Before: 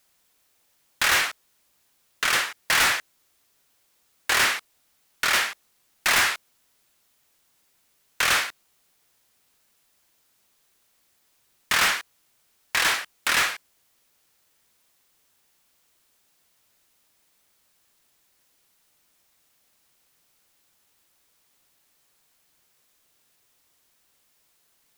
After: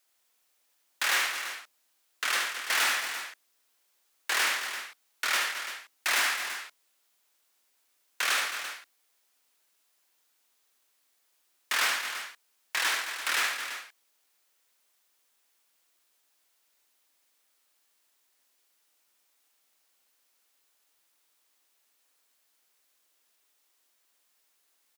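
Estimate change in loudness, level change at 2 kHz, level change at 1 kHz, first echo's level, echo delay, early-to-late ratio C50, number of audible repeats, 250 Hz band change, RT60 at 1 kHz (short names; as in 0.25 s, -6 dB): -6.5 dB, -5.0 dB, -5.5 dB, -5.5 dB, 74 ms, none, 3, -11.0 dB, none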